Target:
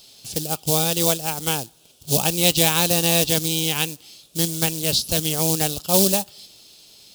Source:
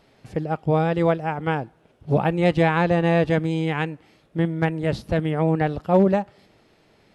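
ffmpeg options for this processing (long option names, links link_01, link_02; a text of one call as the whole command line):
ffmpeg -i in.wav -af "acrusher=bits=6:mode=log:mix=0:aa=0.000001,aexciter=amount=12.4:drive=7.2:freq=3000,volume=-3.5dB" out.wav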